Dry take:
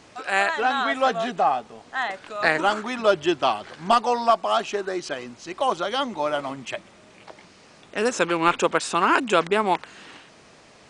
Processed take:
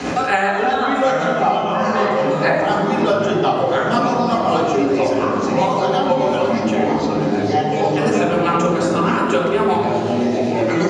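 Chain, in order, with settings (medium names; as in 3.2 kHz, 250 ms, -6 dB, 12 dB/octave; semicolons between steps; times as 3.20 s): rotary cabinet horn 8 Hz; tape echo 85 ms, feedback 90%, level -8 dB, low-pass 1.5 kHz; ever faster or slower copies 652 ms, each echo -4 st, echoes 3; reverberation RT60 0.95 s, pre-delay 3 ms, DRR -4.5 dB; three bands compressed up and down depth 100%; trim -6.5 dB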